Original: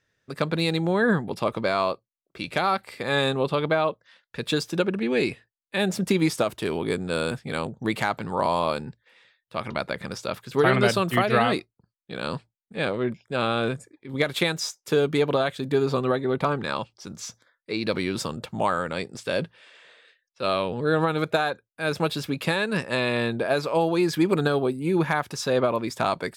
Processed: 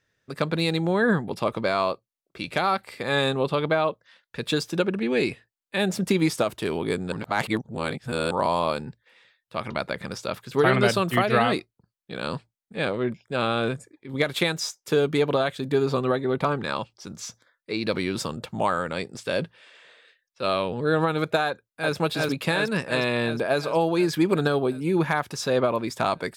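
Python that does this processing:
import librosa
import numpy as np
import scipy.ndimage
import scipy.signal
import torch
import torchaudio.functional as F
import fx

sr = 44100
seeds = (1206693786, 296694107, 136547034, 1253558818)

y = fx.echo_throw(x, sr, start_s=21.47, length_s=0.49, ms=360, feedback_pct=70, wet_db=-1.0)
y = fx.edit(y, sr, fx.reverse_span(start_s=7.12, length_s=1.19), tone=tone)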